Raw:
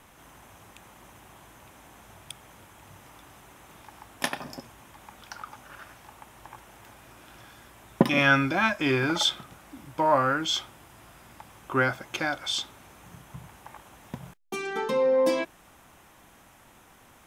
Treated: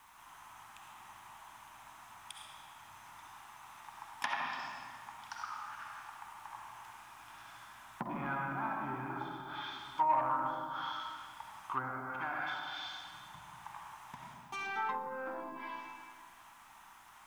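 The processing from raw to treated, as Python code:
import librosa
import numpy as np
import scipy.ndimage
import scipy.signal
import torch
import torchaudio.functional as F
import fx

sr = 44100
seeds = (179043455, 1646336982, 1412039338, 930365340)

y = fx.rev_freeverb(x, sr, rt60_s=2.0, hf_ratio=0.75, predelay_ms=25, drr_db=-2.0)
y = fx.env_lowpass_down(y, sr, base_hz=680.0, full_db=-20.0)
y = 10.0 ** (-14.5 / 20.0) * np.tanh(y / 10.0 ** (-14.5 / 20.0))
y = fx.low_shelf_res(y, sr, hz=690.0, db=-10.0, q=3.0)
y = fx.dmg_noise_colour(y, sr, seeds[0], colour='white', level_db=-66.0)
y = y * librosa.db_to_amplitude(-7.5)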